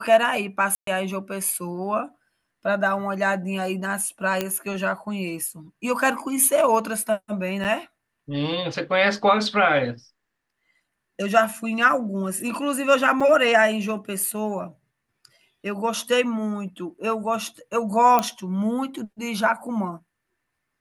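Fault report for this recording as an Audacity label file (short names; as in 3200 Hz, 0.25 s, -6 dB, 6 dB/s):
0.750000	0.870000	gap 0.123 s
4.410000	4.410000	pop -9 dBFS
7.640000	7.650000	gap 8 ms
13.200000	13.210000	gap 5.2 ms
18.190000	18.190000	pop -7 dBFS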